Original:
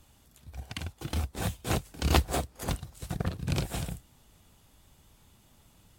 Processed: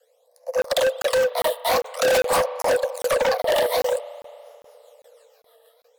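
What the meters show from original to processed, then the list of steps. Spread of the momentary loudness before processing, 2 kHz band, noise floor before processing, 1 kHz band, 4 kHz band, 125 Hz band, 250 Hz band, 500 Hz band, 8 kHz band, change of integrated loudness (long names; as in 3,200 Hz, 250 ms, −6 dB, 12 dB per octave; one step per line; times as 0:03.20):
13 LU, +13.0 dB, −62 dBFS, +12.5 dB, +9.5 dB, −15.0 dB, −5.0 dB, +20.5 dB, +8.5 dB, +11.0 dB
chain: automatic gain control gain up to 8 dB
leveller curve on the samples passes 3
in parallel at −1 dB: downward compressor, threshold −20 dBFS, peak gain reduction 12.5 dB
on the sum: rotating-speaker cabinet horn 0.85 Hz, later 6.3 Hz, at 0:03.91
all-pass phaser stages 12, 0.49 Hz, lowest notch 100–3,000 Hz
frequency shifter +440 Hz
spring reverb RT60 2.8 s, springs 36 ms, chirp 75 ms, DRR 17 dB
gain into a clipping stage and back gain 16.5 dB
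regular buffer underruns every 0.40 s, samples 1,024, zero, from 0:00.62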